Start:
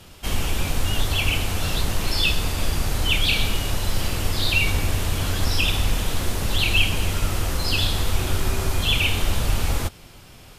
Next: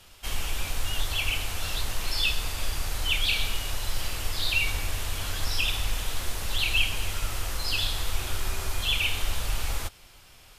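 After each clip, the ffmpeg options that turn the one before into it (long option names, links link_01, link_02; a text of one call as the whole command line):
ffmpeg -i in.wav -af "equalizer=frequency=190:width_type=o:width=3:gain=-11.5,volume=-4dB" out.wav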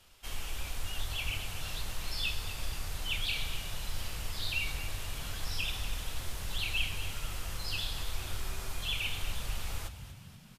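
ffmpeg -i in.wav -filter_complex "[0:a]flanger=delay=2.9:depth=7.2:regen=-79:speed=1.5:shape=triangular,asplit=7[link_01][link_02][link_03][link_04][link_05][link_06][link_07];[link_02]adelay=240,afreqshift=41,volume=-13dB[link_08];[link_03]adelay=480,afreqshift=82,volume=-18.4dB[link_09];[link_04]adelay=720,afreqshift=123,volume=-23.7dB[link_10];[link_05]adelay=960,afreqshift=164,volume=-29.1dB[link_11];[link_06]adelay=1200,afreqshift=205,volume=-34.4dB[link_12];[link_07]adelay=1440,afreqshift=246,volume=-39.8dB[link_13];[link_01][link_08][link_09][link_10][link_11][link_12][link_13]amix=inputs=7:normalize=0,volume=-4dB" out.wav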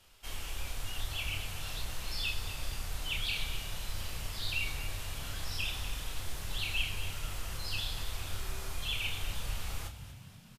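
ffmpeg -i in.wav -filter_complex "[0:a]asplit=2[link_01][link_02];[link_02]adelay=31,volume=-7dB[link_03];[link_01][link_03]amix=inputs=2:normalize=0,volume=-1.5dB" out.wav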